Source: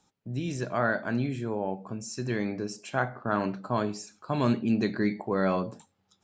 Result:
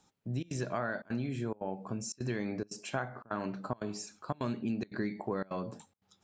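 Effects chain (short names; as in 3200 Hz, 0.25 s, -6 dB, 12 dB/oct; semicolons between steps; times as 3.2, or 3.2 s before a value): compressor 10:1, threshold -30 dBFS, peak gain reduction 11 dB; step gate "xxxxx.xxxxxx." 177 bpm -24 dB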